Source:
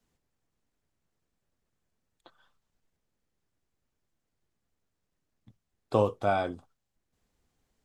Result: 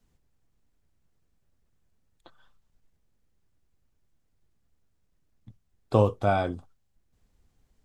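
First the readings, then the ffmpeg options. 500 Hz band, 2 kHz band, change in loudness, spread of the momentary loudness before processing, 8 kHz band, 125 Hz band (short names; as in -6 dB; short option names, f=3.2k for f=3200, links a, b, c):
+2.5 dB, +1.5 dB, +3.0 dB, 11 LU, n/a, +8.5 dB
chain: -af "lowshelf=f=140:g=11.5,volume=1.5dB"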